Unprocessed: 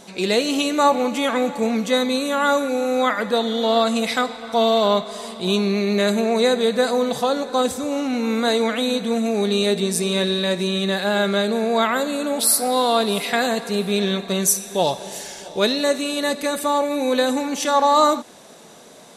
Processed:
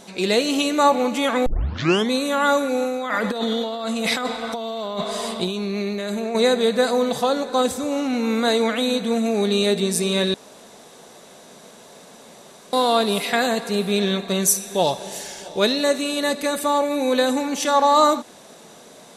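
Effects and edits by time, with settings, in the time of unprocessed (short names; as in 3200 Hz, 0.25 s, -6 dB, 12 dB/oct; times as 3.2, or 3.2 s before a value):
1.46 tape start 0.65 s
2.84–6.35 negative-ratio compressor -25 dBFS
10.34–12.73 room tone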